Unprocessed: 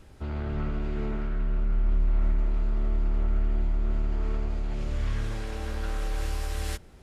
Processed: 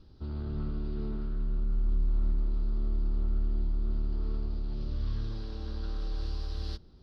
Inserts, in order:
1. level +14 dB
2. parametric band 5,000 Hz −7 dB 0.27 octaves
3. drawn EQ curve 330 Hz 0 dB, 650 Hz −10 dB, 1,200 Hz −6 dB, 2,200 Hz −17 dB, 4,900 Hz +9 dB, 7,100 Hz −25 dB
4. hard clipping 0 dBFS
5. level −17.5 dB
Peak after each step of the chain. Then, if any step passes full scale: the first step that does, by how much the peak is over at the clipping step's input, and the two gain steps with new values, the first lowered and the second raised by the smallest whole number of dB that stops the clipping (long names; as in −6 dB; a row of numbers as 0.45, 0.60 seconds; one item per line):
−1.5, −1.5, −1.5, −1.5, −19.0 dBFS
no step passes full scale